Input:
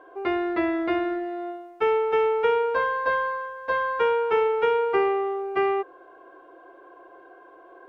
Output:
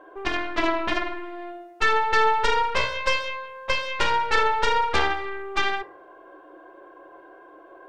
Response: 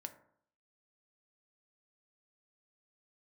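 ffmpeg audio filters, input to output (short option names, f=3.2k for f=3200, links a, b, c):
-filter_complex "[0:a]aeval=exprs='clip(val(0),-1,0.0708)':c=same,aeval=exprs='0.266*(cos(1*acos(clip(val(0)/0.266,-1,1)))-cos(1*PI/2))+0.0266*(cos(3*acos(clip(val(0)/0.266,-1,1)))-cos(3*PI/2))+0.0841*(cos(4*acos(clip(val(0)/0.266,-1,1)))-cos(4*PI/2))+0.075*(cos(7*acos(clip(val(0)/0.266,-1,1)))-cos(7*PI/2))':c=same[a];[1:a]atrim=start_sample=2205[b];[a][b]afir=irnorm=-1:irlink=0,volume=4dB"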